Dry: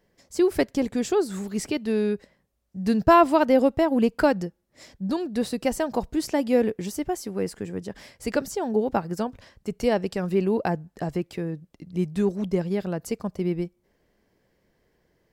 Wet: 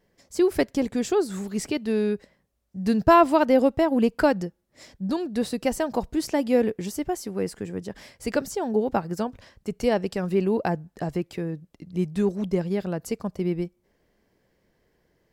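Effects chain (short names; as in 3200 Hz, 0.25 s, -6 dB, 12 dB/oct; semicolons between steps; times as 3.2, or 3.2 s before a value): vibrato 0.52 Hz 6.3 cents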